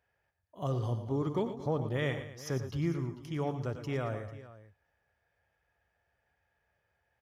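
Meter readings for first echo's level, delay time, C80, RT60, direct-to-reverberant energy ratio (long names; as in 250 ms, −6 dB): −11.5 dB, 95 ms, no reverb audible, no reverb audible, no reverb audible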